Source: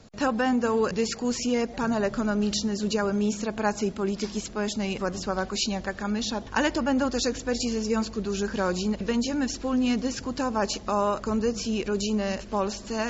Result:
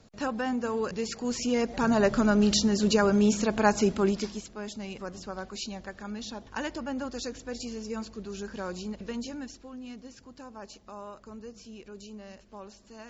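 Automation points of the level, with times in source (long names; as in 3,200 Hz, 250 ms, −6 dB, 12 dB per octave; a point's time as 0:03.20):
0:01.02 −6 dB
0:02.05 +3 dB
0:04.06 +3 dB
0:04.47 −9.5 dB
0:09.28 −9.5 dB
0:09.72 −18 dB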